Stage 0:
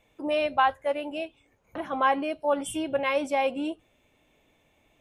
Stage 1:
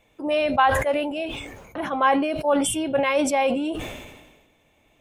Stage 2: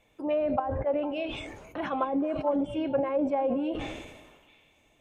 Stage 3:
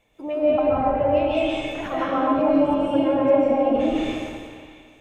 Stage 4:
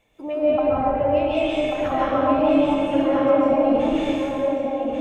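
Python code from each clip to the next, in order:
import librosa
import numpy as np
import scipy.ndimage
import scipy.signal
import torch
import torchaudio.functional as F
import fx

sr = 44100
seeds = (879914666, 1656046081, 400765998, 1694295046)

y1 = fx.sustainer(x, sr, db_per_s=45.0)
y1 = y1 * 10.0 ** (3.5 / 20.0)
y2 = fx.env_lowpass_down(y1, sr, base_hz=440.0, full_db=-16.0)
y2 = fx.echo_stepped(y2, sr, ms=226, hz=420.0, octaves=1.4, feedback_pct=70, wet_db=-11)
y2 = y2 * 10.0 ** (-4.0 / 20.0)
y3 = fx.rev_freeverb(y2, sr, rt60_s=1.8, hf_ratio=0.9, predelay_ms=105, drr_db=-7.5)
y4 = y3 + 10.0 ** (-5.0 / 20.0) * np.pad(y3, (int(1139 * sr / 1000.0), 0))[:len(y3)]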